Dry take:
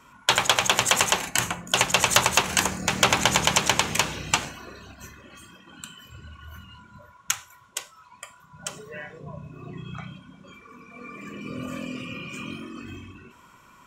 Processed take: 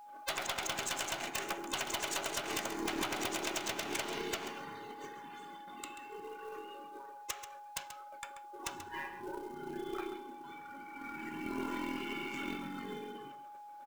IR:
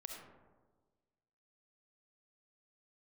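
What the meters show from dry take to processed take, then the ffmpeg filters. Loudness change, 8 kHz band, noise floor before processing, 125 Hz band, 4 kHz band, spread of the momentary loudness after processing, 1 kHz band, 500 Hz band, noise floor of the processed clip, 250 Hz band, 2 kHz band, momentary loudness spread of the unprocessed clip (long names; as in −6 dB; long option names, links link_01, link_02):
−17.0 dB, −16.0 dB, −54 dBFS, −19.0 dB, −16.0 dB, 13 LU, −12.5 dB, −9.0 dB, −51 dBFS, −7.0 dB, −14.0 dB, 21 LU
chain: -filter_complex "[0:a]afftfilt=real='real(if(between(b,1,1008),(2*floor((b-1)/24)+1)*24-b,b),0)':imag='imag(if(between(b,1,1008),(2*floor((b-1)/24)+1)*24-b,b),0)*if(between(b,1,1008),-1,1)':win_size=2048:overlap=0.75,highpass=190,agate=range=-20dB:threshold=-51dB:ratio=16:detection=peak,adynamicequalizer=threshold=0.02:dfrequency=1800:dqfactor=2.6:tfrequency=1800:tqfactor=2.6:attack=5:release=100:ratio=0.375:range=1.5:mode=cutabove:tftype=bell,alimiter=limit=-9dB:level=0:latency=1:release=118,acompressor=threshold=-27dB:ratio=16,aeval=exprs='val(0)+0.00501*sin(2*PI*830*n/s)':channel_layout=same,adynamicsmooth=sensitivity=7:basefreq=3700,acrusher=bits=5:mode=log:mix=0:aa=0.000001,aeval=exprs='0.251*(cos(1*acos(clip(val(0)/0.251,-1,1)))-cos(1*PI/2))+0.0562*(cos(2*acos(clip(val(0)/0.251,-1,1)))-cos(2*PI/2))+0.0631*(cos(3*acos(clip(val(0)/0.251,-1,1)))-cos(3*PI/2))+0.00501*(cos(5*acos(clip(val(0)/0.251,-1,1)))-cos(5*PI/2))':channel_layout=same,aeval=exprs='0.0299*(abs(mod(val(0)/0.0299+3,4)-2)-1)':channel_layout=same,asplit=2[link_01][link_02];[link_02]aecho=0:1:135:0.282[link_03];[link_01][link_03]amix=inputs=2:normalize=0,volume=5.5dB"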